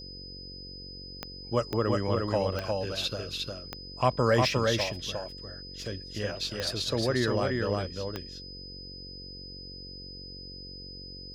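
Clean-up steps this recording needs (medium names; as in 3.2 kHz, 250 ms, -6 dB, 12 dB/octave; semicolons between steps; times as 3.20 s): de-click; de-hum 46.2 Hz, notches 11; band-stop 5 kHz, Q 30; inverse comb 356 ms -3 dB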